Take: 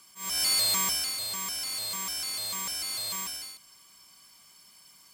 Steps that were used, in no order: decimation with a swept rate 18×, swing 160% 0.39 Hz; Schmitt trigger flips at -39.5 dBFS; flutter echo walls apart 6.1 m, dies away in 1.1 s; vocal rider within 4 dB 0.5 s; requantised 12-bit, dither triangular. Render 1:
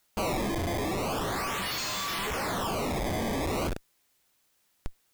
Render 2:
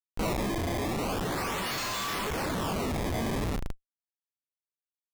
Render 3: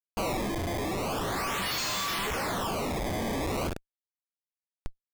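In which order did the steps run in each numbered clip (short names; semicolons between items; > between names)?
flutter echo > Schmitt trigger > decimation with a swept rate > requantised > vocal rider; requantised > flutter echo > decimation with a swept rate > Schmitt trigger > vocal rider; flutter echo > requantised > Schmitt trigger > vocal rider > decimation with a swept rate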